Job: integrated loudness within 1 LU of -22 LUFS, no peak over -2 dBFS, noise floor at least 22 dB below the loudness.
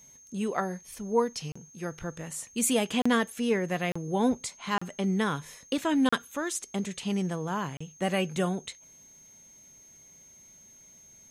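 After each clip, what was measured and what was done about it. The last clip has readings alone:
dropouts 6; longest dropout 35 ms; steady tone 6.4 kHz; tone level -52 dBFS; loudness -30.0 LUFS; peak level -11.5 dBFS; loudness target -22.0 LUFS
-> interpolate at 1.52/3.02/3.92/4.78/6.09/7.77 s, 35 ms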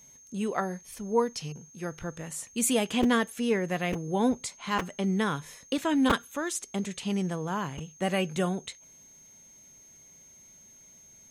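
dropouts 0; steady tone 6.4 kHz; tone level -52 dBFS
-> band-stop 6.4 kHz, Q 30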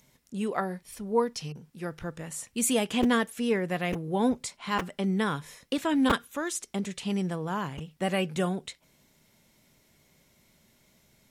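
steady tone not found; loudness -29.5 LUFS; peak level -11.5 dBFS; loudness target -22.0 LUFS
-> trim +7.5 dB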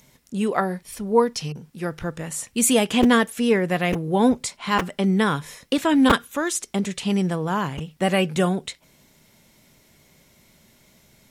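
loudness -22.0 LUFS; peak level -4.0 dBFS; noise floor -58 dBFS

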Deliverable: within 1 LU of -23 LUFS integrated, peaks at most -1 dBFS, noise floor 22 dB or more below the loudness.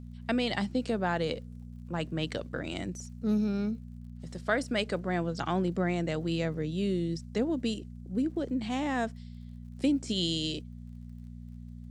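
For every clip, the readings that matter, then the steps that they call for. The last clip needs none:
tick rate 37 per s; hum 60 Hz; highest harmonic 240 Hz; hum level -41 dBFS; loudness -32.0 LUFS; peak level -14.0 dBFS; loudness target -23.0 LUFS
-> de-click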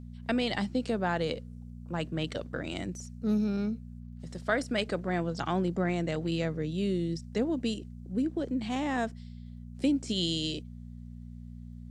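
tick rate 0 per s; hum 60 Hz; highest harmonic 240 Hz; hum level -42 dBFS
-> de-hum 60 Hz, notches 4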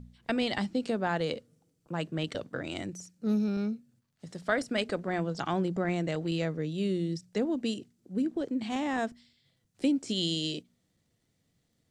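hum not found; loudness -32.0 LUFS; peak level -14.5 dBFS; loudness target -23.0 LUFS
-> trim +9 dB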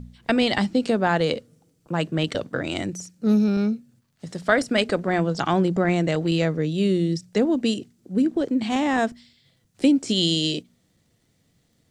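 loudness -23.0 LUFS; peak level -5.5 dBFS; noise floor -67 dBFS

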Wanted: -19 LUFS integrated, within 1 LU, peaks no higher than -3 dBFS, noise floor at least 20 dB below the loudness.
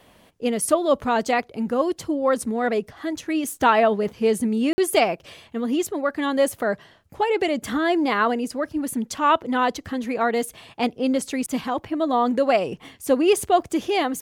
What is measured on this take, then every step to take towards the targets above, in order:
dropouts 1; longest dropout 50 ms; loudness -22.5 LUFS; peak level -5.5 dBFS; loudness target -19.0 LUFS
-> interpolate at 4.73 s, 50 ms; trim +3.5 dB; peak limiter -3 dBFS

